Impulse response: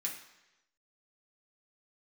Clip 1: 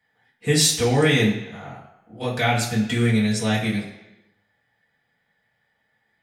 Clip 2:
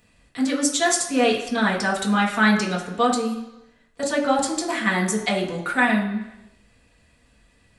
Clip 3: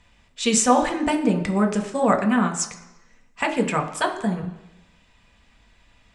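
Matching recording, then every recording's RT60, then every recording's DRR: 2; 1.0 s, 1.0 s, 1.0 s; -7.5 dB, -3.0 dB, 3.0 dB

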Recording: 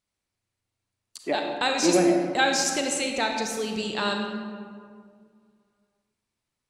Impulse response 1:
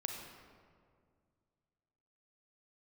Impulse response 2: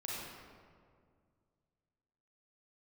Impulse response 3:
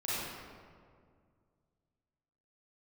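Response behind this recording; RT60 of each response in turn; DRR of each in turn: 1; 2.1 s, 2.0 s, 2.0 s; 2.0 dB, -6.0 dB, -10.5 dB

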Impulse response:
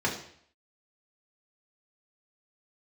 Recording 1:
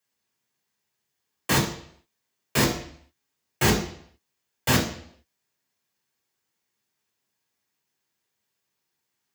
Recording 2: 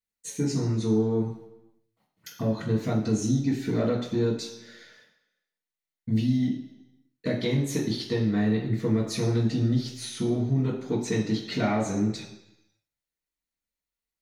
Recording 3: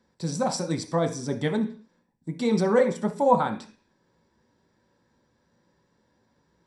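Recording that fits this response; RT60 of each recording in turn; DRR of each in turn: 1; 0.60 s, 1.0 s, 0.45 s; -3.5 dB, -15.0 dB, 3.0 dB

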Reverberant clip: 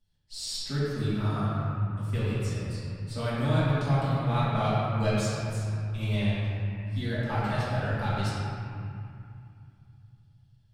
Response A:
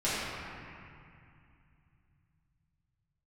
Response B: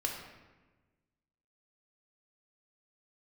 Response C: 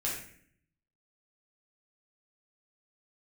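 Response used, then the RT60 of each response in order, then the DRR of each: A; 2.4 s, 1.2 s, 0.60 s; -12.5 dB, 0.0 dB, -5.5 dB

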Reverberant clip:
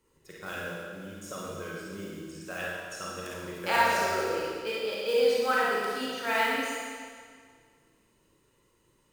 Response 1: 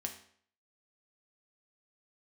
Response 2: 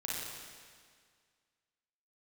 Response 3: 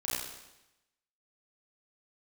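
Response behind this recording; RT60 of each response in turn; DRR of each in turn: 2; 0.55 s, 1.9 s, 0.95 s; 3.0 dB, -6.0 dB, -8.0 dB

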